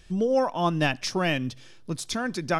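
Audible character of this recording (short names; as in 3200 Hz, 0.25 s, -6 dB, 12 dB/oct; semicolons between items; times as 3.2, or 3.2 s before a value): noise floor -48 dBFS; spectral tilt -5.0 dB/oct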